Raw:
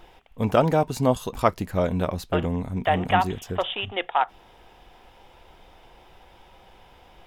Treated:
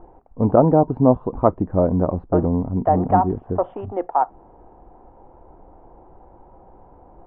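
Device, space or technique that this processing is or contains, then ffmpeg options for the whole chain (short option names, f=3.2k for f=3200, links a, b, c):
under water: -af "lowpass=f=1k:w=0.5412,lowpass=f=1k:w=1.3066,equalizer=f=300:t=o:w=0.49:g=5.5,volume=5dB"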